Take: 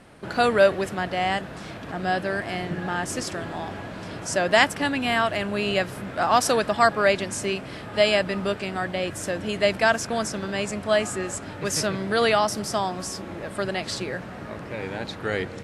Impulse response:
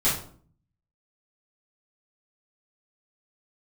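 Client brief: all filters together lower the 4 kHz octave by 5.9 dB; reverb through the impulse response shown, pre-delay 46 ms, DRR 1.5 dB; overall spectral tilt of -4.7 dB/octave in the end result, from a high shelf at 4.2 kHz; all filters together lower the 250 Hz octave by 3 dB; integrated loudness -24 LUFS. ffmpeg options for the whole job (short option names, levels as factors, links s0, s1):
-filter_complex "[0:a]equalizer=f=250:t=o:g=-4,equalizer=f=4000:t=o:g=-6,highshelf=f=4200:g=-4.5,asplit=2[s0][s1];[1:a]atrim=start_sample=2205,adelay=46[s2];[s1][s2]afir=irnorm=-1:irlink=0,volume=0.188[s3];[s0][s3]amix=inputs=2:normalize=0,volume=0.944"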